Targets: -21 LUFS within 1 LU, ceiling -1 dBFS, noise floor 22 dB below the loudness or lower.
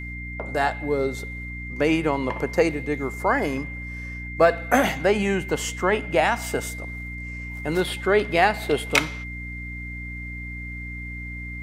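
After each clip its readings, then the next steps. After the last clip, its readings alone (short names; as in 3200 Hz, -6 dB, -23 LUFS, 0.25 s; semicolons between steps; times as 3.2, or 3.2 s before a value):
hum 60 Hz; harmonics up to 300 Hz; hum level -33 dBFS; steady tone 2100 Hz; tone level -35 dBFS; loudness -25.0 LUFS; peak -3.5 dBFS; loudness target -21.0 LUFS
-> de-hum 60 Hz, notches 5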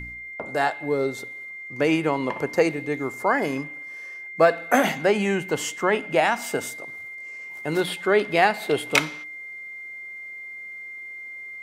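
hum none; steady tone 2100 Hz; tone level -35 dBFS
-> notch 2100 Hz, Q 30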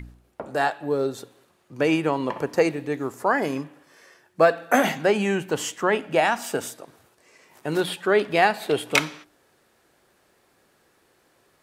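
steady tone none; loudness -23.5 LUFS; peak -4.0 dBFS; loudness target -21.0 LUFS
-> gain +2.5 dB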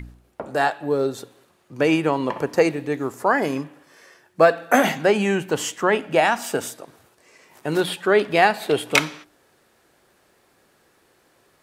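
loudness -21.0 LUFS; peak -1.5 dBFS; noise floor -61 dBFS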